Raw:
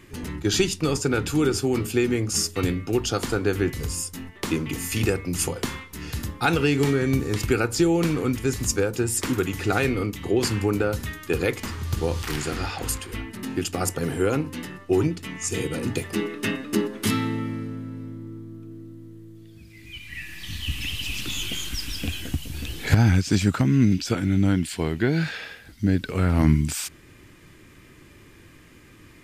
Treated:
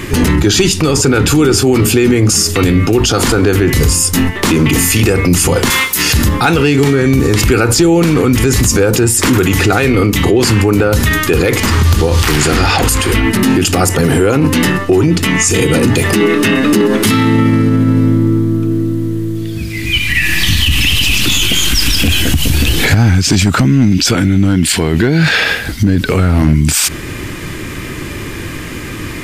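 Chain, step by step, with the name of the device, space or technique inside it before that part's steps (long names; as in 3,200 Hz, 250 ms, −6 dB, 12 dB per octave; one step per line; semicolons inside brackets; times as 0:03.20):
0:05.70–0:06.13: RIAA equalisation recording
loud club master (downward compressor 1.5 to 1, threshold −27 dBFS, peak gain reduction 6 dB; hard clipping −16 dBFS, distortion −26 dB; boost into a limiter +28 dB)
level −1.5 dB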